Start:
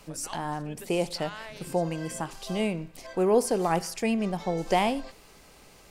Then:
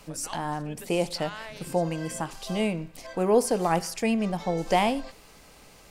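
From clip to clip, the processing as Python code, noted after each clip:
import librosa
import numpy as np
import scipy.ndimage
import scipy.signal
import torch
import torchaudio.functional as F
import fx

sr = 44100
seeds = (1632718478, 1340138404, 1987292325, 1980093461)

y = fx.notch(x, sr, hz=380.0, q=12.0)
y = y * 10.0 ** (1.5 / 20.0)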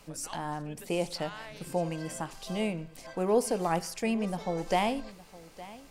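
y = x + 10.0 ** (-18.5 / 20.0) * np.pad(x, (int(863 * sr / 1000.0), 0))[:len(x)]
y = y * 10.0 ** (-4.5 / 20.0)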